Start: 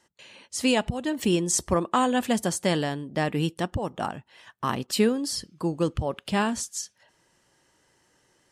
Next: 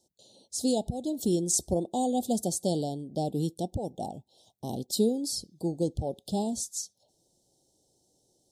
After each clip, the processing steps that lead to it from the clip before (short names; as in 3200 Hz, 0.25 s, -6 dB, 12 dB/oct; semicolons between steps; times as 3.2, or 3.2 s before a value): Chebyshev band-stop 780–3600 Hz, order 4; high shelf 12000 Hz +7.5 dB; gain -3 dB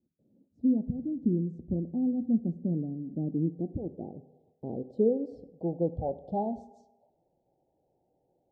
reverb RT60 1.1 s, pre-delay 3 ms, DRR 12 dB; low-pass sweep 250 Hz -> 770 Hz, 2.95–6.07; gain -4 dB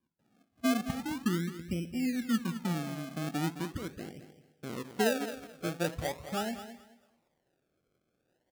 decimation with a swept rate 32×, swing 100% 0.41 Hz; feedback echo 0.215 s, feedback 21%, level -12 dB; gain -3.5 dB